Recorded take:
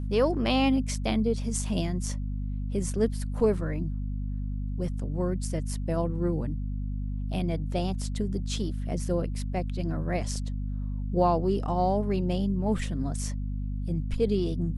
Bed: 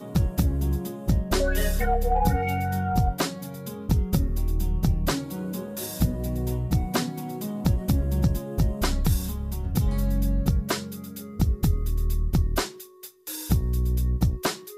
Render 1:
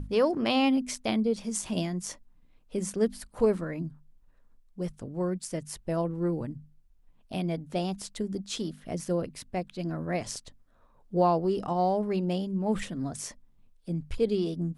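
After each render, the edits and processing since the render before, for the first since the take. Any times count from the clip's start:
mains-hum notches 50/100/150/200/250 Hz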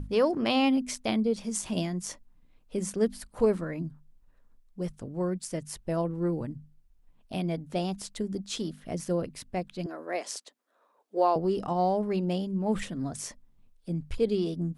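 0:09.86–0:11.36: high-pass filter 340 Hz 24 dB per octave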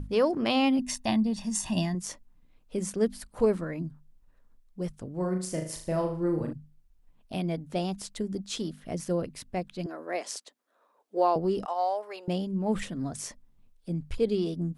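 0:00.79–0:01.95: comb filter 1.1 ms, depth 77%
0:05.14–0:06.53: flutter between parallel walls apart 6.5 metres, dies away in 0.46 s
0:11.65–0:12.28: high-pass filter 560 Hz 24 dB per octave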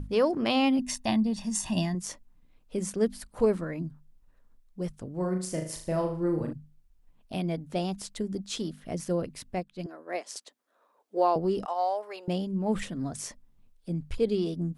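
0:09.56–0:10.36: expander for the loud parts, over −50 dBFS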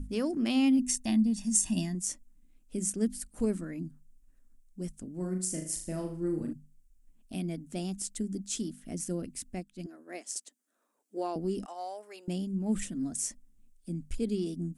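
octave-band graphic EQ 125/250/500/1,000/2,000/4,000/8,000 Hz −11/+6/−10/−12/−3/−8/+9 dB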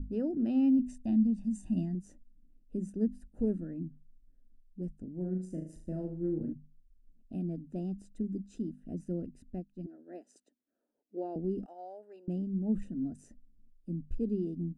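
moving average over 40 samples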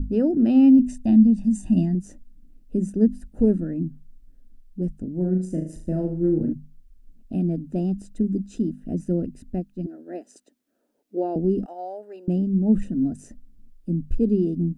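level +12 dB

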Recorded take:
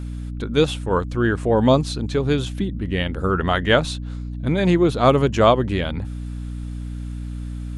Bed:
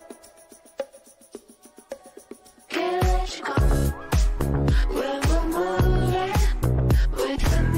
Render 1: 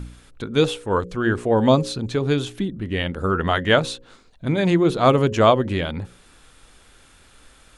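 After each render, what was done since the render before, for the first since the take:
hum removal 60 Hz, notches 9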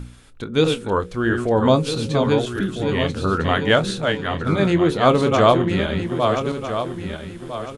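feedback delay that plays each chunk backwards 652 ms, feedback 55%, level −5 dB
double-tracking delay 25 ms −12.5 dB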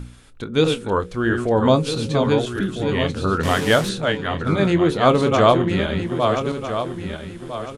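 0:03.43–0:03.89: linear delta modulator 64 kbit/s, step −23 dBFS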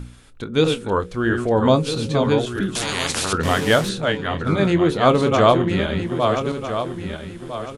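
0:02.75–0:03.33: every bin compressed towards the loudest bin 4 to 1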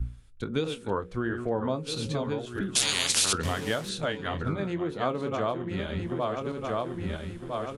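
downward compressor 16 to 1, threshold −26 dBFS, peak gain reduction 17.5 dB
multiband upward and downward expander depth 100%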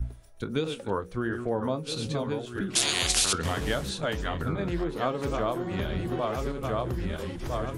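mix in bed −15 dB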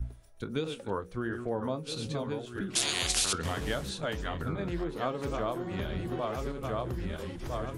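level −4 dB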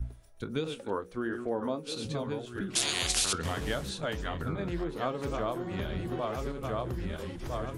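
0:00.82–0:02.05: low shelf with overshoot 190 Hz −6.5 dB, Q 1.5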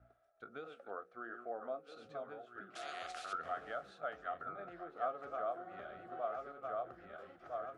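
pair of resonant band-passes 960 Hz, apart 0.86 octaves

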